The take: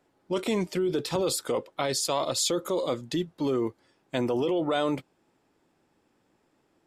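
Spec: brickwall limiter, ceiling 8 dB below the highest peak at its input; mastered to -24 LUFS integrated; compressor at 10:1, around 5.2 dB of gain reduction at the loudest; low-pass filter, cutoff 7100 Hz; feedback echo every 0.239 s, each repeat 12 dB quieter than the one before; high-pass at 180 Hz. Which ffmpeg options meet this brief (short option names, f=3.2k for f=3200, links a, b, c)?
-af "highpass=180,lowpass=7.1k,acompressor=threshold=-28dB:ratio=10,alimiter=level_in=2dB:limit=-24dB:level=0:latency=1,volume=-2dB,aecho=1:1:239|478|717:0.251|0.0628|0.0157,volume=11.5dB"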